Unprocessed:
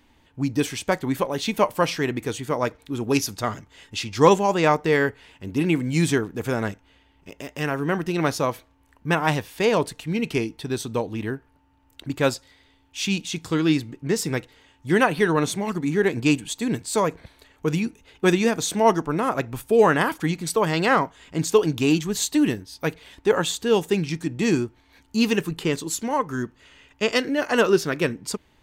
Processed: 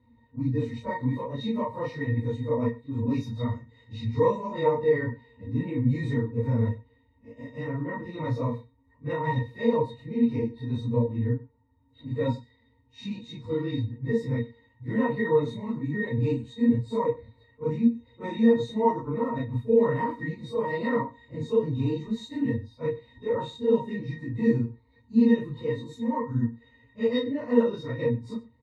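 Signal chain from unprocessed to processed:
random phases in long frames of 100 ms
low-shelf EQ 120 Hz +6 dB
in parallel at −2.5 dB: brickwall limiter −12.5 dBFS, peak gain reduction 10 dB
on the sum: resonances in every octave A#, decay 0.11 s
on a send: single-tap delay 95 ms −19.5 dB

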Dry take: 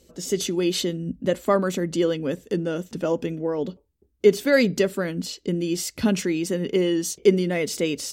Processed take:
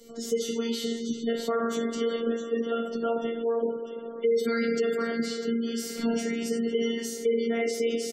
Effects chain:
notch filter 2,500 Hz, Q 12
comb filter 4.4 ms, depth 45%
hollow resonant body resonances 400/1,400/2,200 Hz, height 7 dB, ringing for 40 ms
on a send: delay with a high-pass on its return 646 ms, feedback 35%, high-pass 3,000 Hz, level −10 dB
on the sum: coupled-rooms reverb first 0.5 s, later 4.3 s, from −17 dB, DRR −2.5 dB
phases set to zero 231 Hz
gate on every frequency bin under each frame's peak −30 dB strong
brickwall limiter −9.5 dBFS, peak gain reduction 10.5 dB
multiband upward and downward compressor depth 40%
level −7 dB

